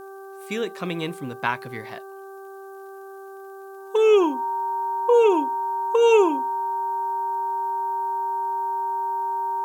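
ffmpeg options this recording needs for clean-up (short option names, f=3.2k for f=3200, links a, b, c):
-af "adeclick=t=4,bandreject=f=389.1:t=h:w=4,bandreject=f=778.2:t=h:w=4,bandreject=f=1.1673k:t=h:w=4,bandreject=f=1.5564k:t=h:w=4,bandreject=f=930:w=30,agate=range=-21dB:threshold=-32dB"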